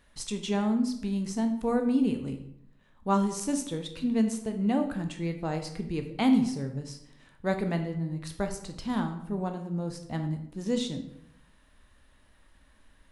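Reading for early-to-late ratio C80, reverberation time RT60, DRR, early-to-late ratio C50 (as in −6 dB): 12.0 dB, 0.75 s, 5.5 dB, 9.5 dB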